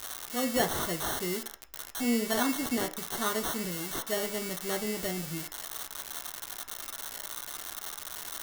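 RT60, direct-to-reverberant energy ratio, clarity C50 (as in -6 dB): 0.45 s, 4.0 dB, 15.0 dB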